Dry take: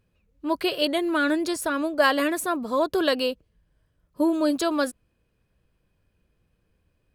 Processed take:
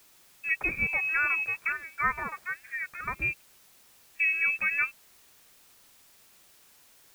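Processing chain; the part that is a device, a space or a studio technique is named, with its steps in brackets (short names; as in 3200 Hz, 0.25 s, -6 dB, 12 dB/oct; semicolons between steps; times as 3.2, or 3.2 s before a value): 1.72–3.22 HPF 1200 Hz 12 dB/oct; scrambled radio voice (BPF 310–2900 Hz; inverted band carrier 2900 Hz; white noise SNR 26 dB); gain -2.5 dB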